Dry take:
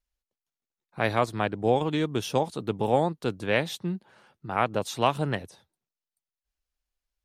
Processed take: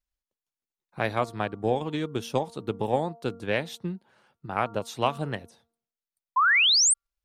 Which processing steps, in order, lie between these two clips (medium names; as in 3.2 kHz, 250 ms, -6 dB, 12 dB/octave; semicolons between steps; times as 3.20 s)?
transient shaper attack +4 dB, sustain -1 dB; painted sound rise, 6.36–6.94 s, 970–9200 Hz -16 dBFS; de-hum 231.4 Hz, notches 6; trim -4 dB